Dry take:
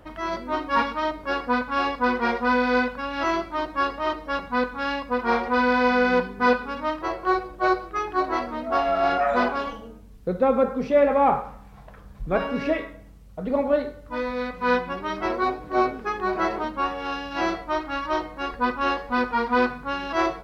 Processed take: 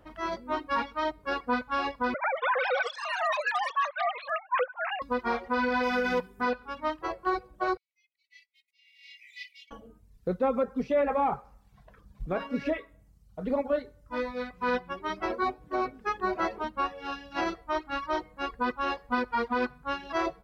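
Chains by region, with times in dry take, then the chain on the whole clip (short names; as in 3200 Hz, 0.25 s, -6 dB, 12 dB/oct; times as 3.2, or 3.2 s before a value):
2.14–5.02 sine-wave speech + echoes that change speed 0.232 s, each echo +7 st, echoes 3, each echo -6 dB
5.83–6.41 high shelf 4600 Hz +11 dB + notch 4300 Hz, Q 6.7
7.77–9.71 gate -30 dBFS, range -17 dB + auto swell 0.646 s + brick-wall FIR high-pass 1900 Hz
whole clip: reverb removal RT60 0.88 s; limiter -18 dBFS; upward expander 1.5:1, over -37 dBFS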